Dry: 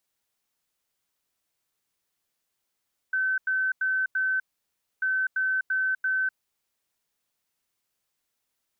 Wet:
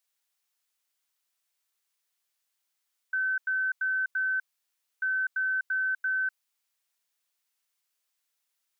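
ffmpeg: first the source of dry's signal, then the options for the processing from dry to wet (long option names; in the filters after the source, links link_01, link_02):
-f lavfi -i "aevalsrc='0.075*sin(2*PI*1530*t)*clip(min(mod(mod(t,1.89),0.34),0.25-mod(mod(t,1.89),0.34))/0.005,0,1)*lt(mod(t,1.89),1.36)':duration=3.78:sample_rate=44100"
-af "highpass=frequency=1300:poles=1"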